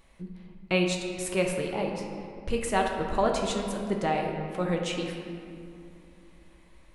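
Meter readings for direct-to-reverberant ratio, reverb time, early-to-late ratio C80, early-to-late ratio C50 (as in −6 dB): 1.0 dB, 2.6 s, 4.5 dB, 3.0 dB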